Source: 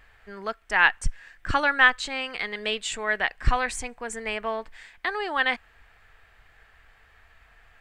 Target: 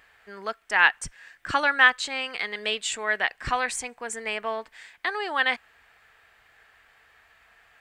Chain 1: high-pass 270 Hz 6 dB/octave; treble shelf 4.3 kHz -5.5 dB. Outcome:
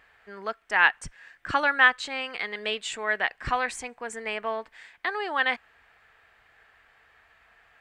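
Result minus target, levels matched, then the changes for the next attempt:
8 kHz band -5.5 dB
change: treble shelf 4.3 kHz +3.5 dB

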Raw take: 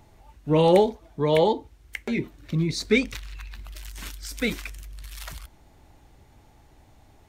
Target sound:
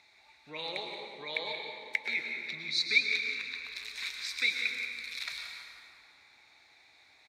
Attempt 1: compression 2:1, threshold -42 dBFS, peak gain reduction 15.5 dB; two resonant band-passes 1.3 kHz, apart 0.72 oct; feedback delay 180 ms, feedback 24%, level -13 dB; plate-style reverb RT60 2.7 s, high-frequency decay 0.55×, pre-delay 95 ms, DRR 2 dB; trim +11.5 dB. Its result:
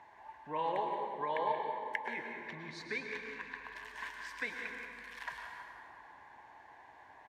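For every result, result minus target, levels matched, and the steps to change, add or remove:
1 kHz band +18.0 dB; compression: peak gain reduction +4.5 dB
change: two resonant band-passes 3 kHz, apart 0.72 oct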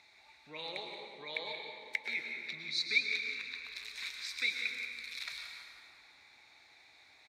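compression: peak gain reduction +4.5 dB
change: compression 2:1, threshold -33.5 dBFS, peak gain reduction 11.5 dB

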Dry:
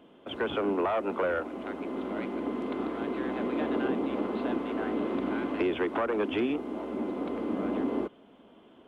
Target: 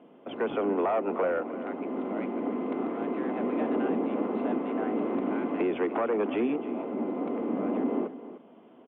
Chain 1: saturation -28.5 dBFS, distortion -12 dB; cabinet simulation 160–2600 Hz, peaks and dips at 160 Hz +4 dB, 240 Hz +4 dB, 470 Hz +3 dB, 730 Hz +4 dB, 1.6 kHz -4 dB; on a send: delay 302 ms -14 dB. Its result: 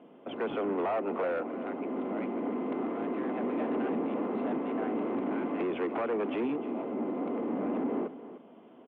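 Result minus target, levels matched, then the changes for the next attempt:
saturation: distortion +15 dB
change: saturation -18 dBFS, distortion -27 dB

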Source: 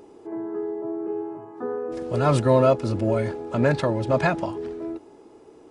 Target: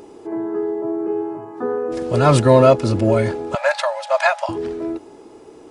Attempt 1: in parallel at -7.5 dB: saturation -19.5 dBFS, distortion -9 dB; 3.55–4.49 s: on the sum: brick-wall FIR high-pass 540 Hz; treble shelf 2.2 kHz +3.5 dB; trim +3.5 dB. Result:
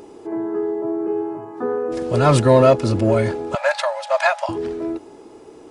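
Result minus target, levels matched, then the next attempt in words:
saturation: distortion +12 dB
in parallel at -7.5 dB: saturation -9 dBFS, distortion -21 dB; 3.55–4.49 s: on the sum: brick-wall FIR high-pass 540 Hz; treble shelf 2.2 kHz +3.5 dB; trim +3.5 dB

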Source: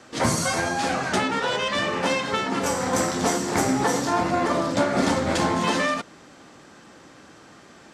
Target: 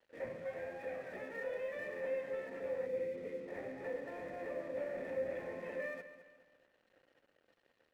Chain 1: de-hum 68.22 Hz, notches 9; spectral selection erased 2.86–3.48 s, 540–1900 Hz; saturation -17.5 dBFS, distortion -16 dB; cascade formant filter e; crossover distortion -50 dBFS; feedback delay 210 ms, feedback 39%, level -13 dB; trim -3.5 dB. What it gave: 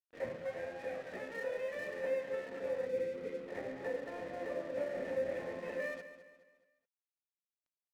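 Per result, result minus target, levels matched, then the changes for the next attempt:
saturation: distortion -6 dB; crossover distortion: distortion +6 dB
change: saturation -24 dBFS, distortion -10 dB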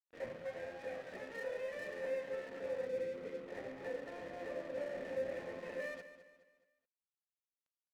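crossover distortion: distortion +8 dB
change: crossover distortion -59.5 dBFS

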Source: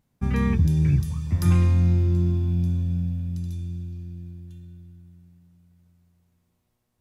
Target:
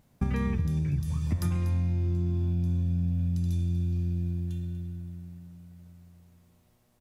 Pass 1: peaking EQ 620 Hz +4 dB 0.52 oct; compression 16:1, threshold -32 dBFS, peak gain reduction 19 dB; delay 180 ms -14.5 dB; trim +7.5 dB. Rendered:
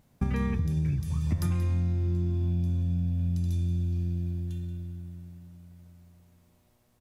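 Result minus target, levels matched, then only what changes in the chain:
echo 61 ms early
change: delay 241 ms -14.5 dB

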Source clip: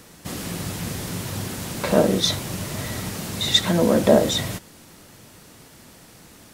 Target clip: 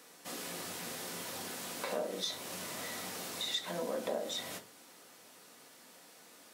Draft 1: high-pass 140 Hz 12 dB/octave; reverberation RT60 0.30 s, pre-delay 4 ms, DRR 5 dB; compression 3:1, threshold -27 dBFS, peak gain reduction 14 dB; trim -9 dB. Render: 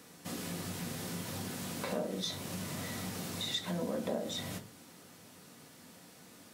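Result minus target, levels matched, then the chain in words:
125 Hz band +11.5 dB
high-pass 400 Hz 12 dB/octave; reverberation RT60 0.30 s, pre-delay 4 ms, DRR 5 dB; compression 3:1, threshold -27 dBFS, peak gain reduction 12.5 dB; trim -9 dB

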